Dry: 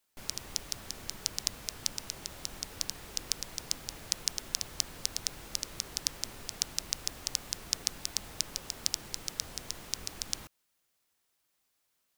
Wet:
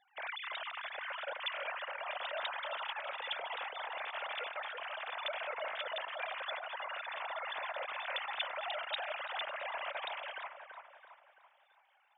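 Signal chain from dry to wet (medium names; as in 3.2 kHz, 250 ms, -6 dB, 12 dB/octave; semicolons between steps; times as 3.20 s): formants replaced by sine waves; harmonic-percussive split percussive -7 dB; feedback echo behind a low-pass 334 ms, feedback 46%, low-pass 1.4 kHz, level -3.5 dB; trim +1 dB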